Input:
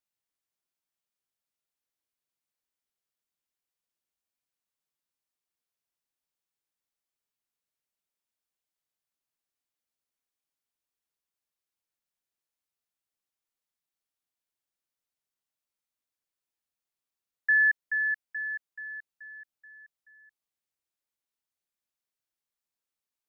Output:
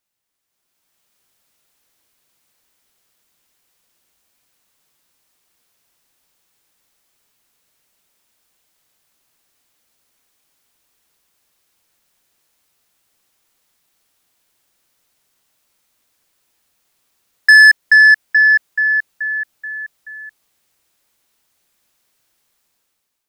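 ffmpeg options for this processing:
ffmpeg -i in.wav -filter_complex "[0:a]asplit=2[link_01][link_02];[link_02]acompressor=threshold=-31dB:ratio=6,volume=-2dB[link_03];[link_01][link_03]amix=inputs=2:normalize=0,asoftclip=type=tanh:threshold=-23dB,dynaudnorm=framelen=230:gausssize=7:maxgain=13.5dB,volume=6dB" out.wav

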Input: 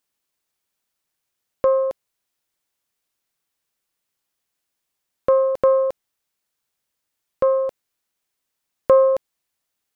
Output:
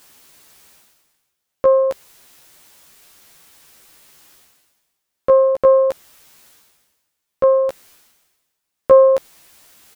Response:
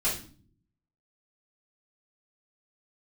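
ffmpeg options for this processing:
-filter_complex "[0:a]areverse,acompressor=mode=upward:threshold=-29dB:ratio=2.5,areverse,asplit=2[link_01][link_02];[link_02]adelay=13,volume=-2.5dB[link_03];[link_01][link_03]amix=inputs=2:normalize=0"

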